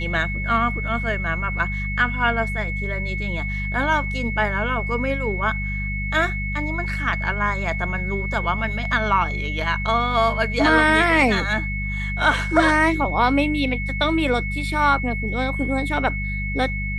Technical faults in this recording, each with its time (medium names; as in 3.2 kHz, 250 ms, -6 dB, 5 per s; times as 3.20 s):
hum 50 Hz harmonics 4 -27 dBFS
whine 2.2 kHz -28 dBFS